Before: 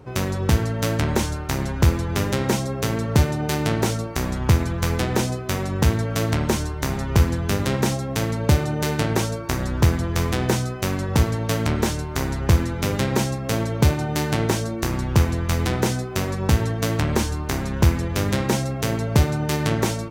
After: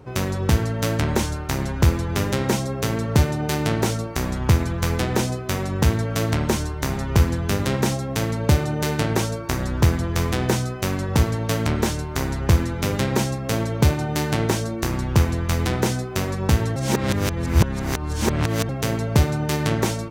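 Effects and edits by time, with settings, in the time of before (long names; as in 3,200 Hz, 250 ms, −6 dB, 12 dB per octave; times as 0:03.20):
0:16.76–0:18.69: reverse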